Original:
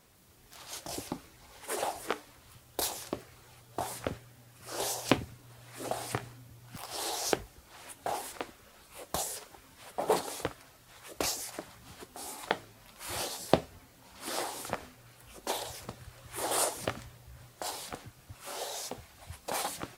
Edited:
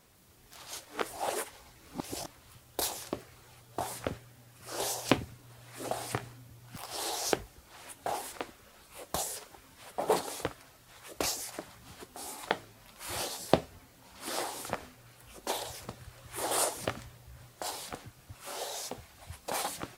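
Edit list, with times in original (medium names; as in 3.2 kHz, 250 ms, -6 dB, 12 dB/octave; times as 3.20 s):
0.85–2.27 s: reverse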